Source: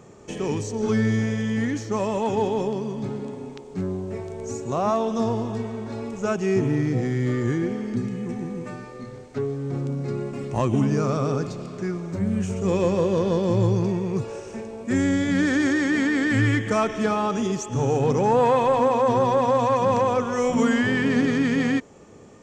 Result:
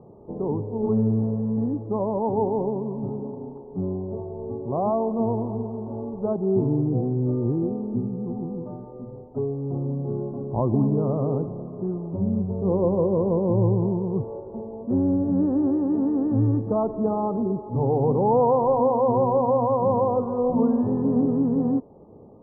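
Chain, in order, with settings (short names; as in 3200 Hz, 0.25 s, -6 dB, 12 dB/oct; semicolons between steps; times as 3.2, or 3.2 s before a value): steep low-pass 990 Hz 48 dB/oct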